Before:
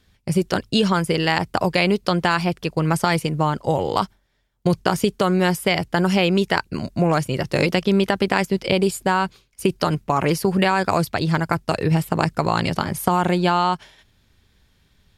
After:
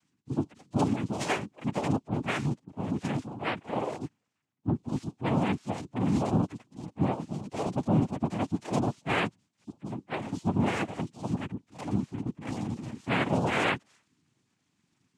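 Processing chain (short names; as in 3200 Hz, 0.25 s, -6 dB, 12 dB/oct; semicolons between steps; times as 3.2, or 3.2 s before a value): median-filter separation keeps harmonic; chorus voices 6, 0.49 Hz, delay 10 ms, depth 1.2 ms; noise vocoder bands 4; gain -6 dB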